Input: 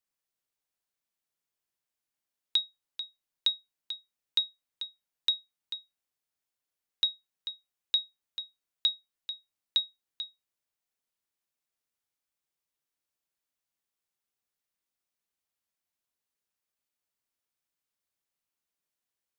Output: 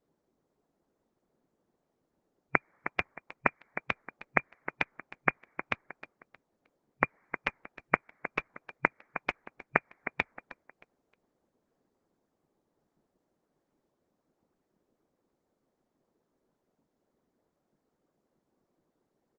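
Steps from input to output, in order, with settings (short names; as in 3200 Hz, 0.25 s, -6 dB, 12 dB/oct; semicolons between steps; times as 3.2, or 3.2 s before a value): FFT band-pass 130–2400 Hz; low-pass opened by the level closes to 380 Hz, open at -63.5 dBFS; feedback echo 0.312 s, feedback 32%, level -16.5 dB; harmonic-percussive split harmonic -16 dB; maximiser +34 dB; Opus 12 kbps 48000 Hz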